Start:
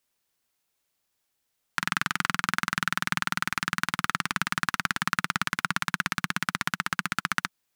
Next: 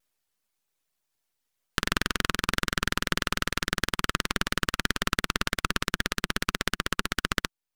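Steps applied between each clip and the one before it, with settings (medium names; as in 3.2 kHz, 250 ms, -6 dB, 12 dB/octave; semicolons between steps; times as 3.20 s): reverb removal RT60 1 s; half-wave rectifier; vibrato with a chosen wave saw down 6 Hz, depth 160 cents; trim +3.5 dB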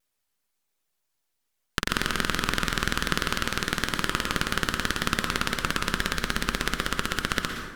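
plate-style reverb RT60 1.2 s, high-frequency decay 0.55×, pre-delay 105 ms, DRR 4.5 dB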